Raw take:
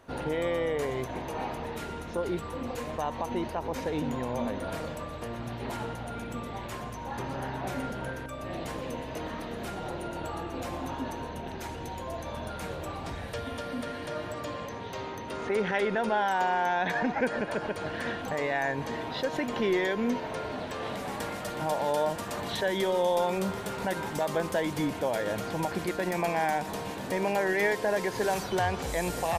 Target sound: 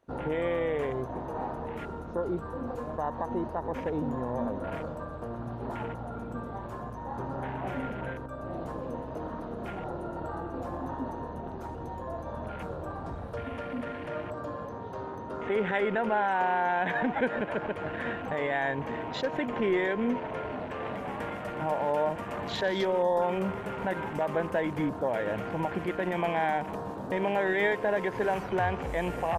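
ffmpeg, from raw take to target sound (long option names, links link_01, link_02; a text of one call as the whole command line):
ffmpeg -i in.wav -af "afwtdn=0.01" out.wav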